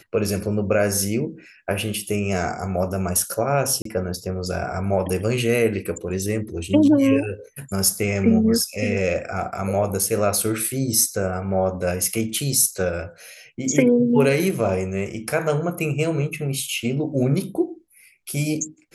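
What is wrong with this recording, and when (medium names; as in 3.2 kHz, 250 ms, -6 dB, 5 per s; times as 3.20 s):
3.82–3.85 s: dropout 33 ms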